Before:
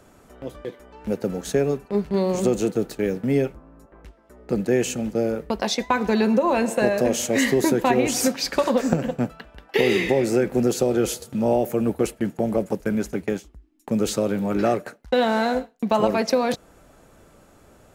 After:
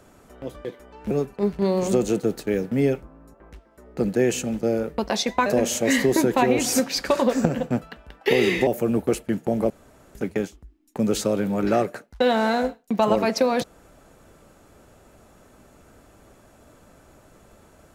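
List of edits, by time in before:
1.11–1.63 s: delete
5.98–6.94 s: delete
10.15–11.59 s: delete
12.62–13.07 s: room tone

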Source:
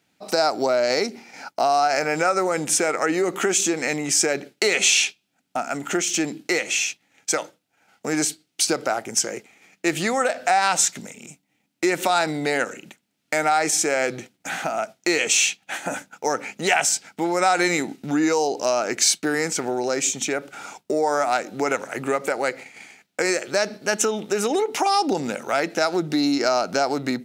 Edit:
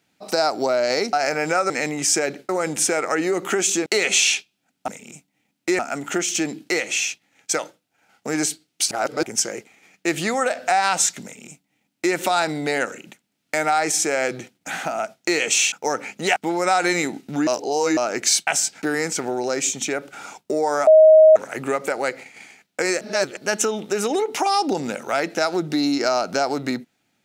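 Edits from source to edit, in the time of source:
1.13–1.83 s: delete
3.77–4.56 s: move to 2.40 s
8.70–9.02 s: reverse
11.03–11.94 s: copy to 5.58 s
15.51–16.12 s: delete
16.76–17.11 s: move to 19.22 s
18.22–18.72 s: reverse
21.27–21.76 s: bleep 629 Hz -6.5 dBFS
23.41–23.77 s: reverse

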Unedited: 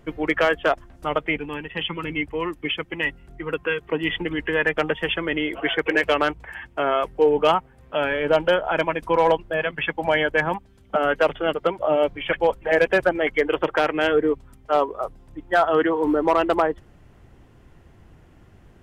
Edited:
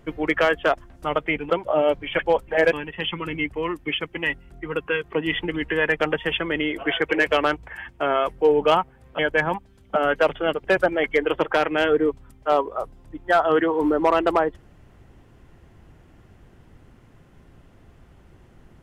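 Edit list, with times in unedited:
7.96–10.19 s: delete
11.64–12.87 s: move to 1.50 s

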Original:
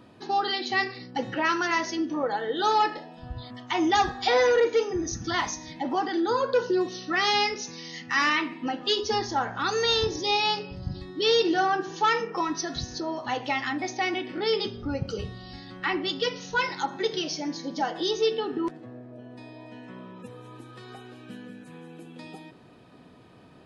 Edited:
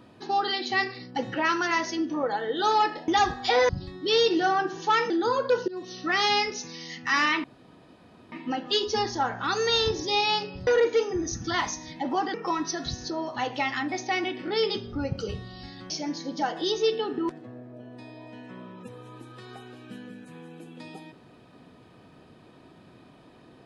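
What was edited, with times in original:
3.08–3.86 s: delete
4.47–6.14 s: swap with 10.83–12.24 s
6.72–7.06 s: fade in, from -23 dB
8.48 s: insert room tone 0.88 s
15.80–17.29 s: delete

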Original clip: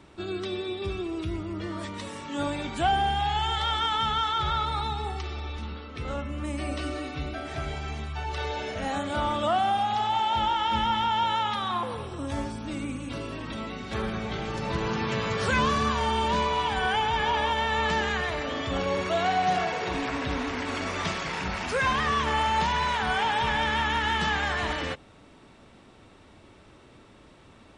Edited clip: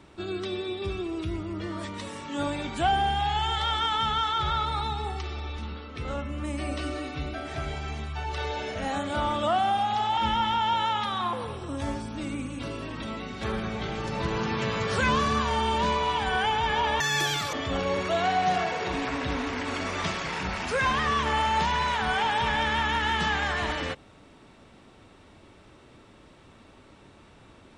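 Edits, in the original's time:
10.17–10.67 s: delete
17.50–18.54 s: speed 195%

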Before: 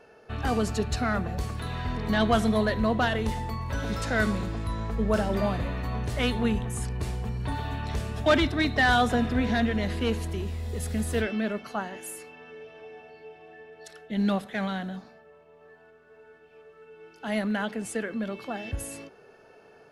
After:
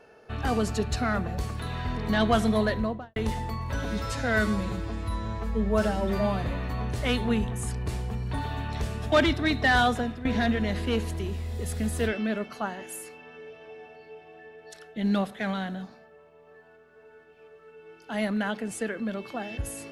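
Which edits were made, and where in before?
2.67–3.16 s: studio fade out
3.85–5.57 s: stretch 1.5×
8.96–9.39 s: fade out, to -16 dB

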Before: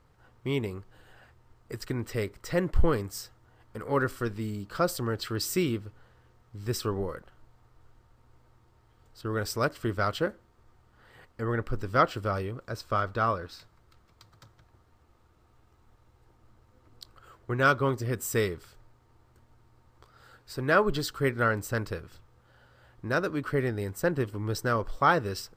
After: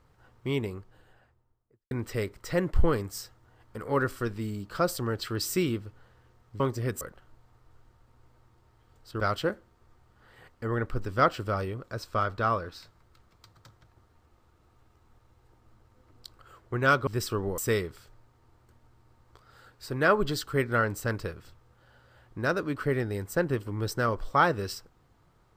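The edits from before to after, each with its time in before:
0.54–1.91 s: studio fade out
6.60–7.11 s: swap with 17.84–18.25 s
9.30–9.97 s: delete

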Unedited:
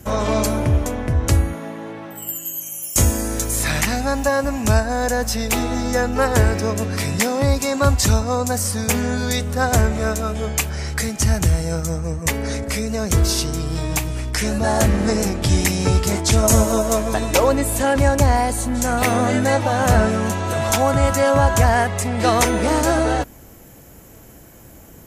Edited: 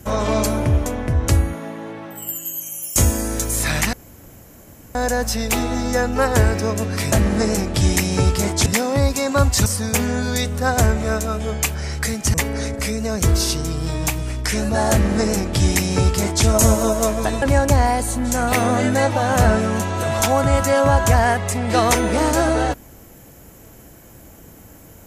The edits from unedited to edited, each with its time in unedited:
3.93–4.95 s: room tone
8.12–8.61 s: delete
11.29–12.23 s: delete
14.80–16.34 s: copy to 7.12 s
17.31–17.92 s: delete

